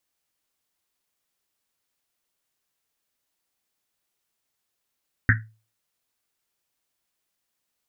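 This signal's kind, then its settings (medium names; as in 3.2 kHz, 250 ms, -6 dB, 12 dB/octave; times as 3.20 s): Risset drum, pitch 110 Hz, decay 0.35 s, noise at 1.7 kHz, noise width 470 Hz, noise 45%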